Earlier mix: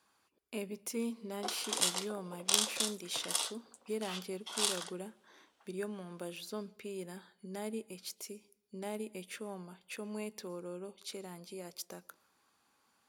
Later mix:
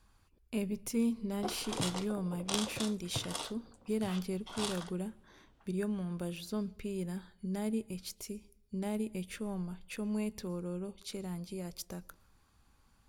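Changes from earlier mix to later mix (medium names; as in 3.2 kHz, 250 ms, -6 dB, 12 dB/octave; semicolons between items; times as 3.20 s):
background: add tilt EQ -3 dB/octave; master: remove high-pass 330 Hz 12 dB/octave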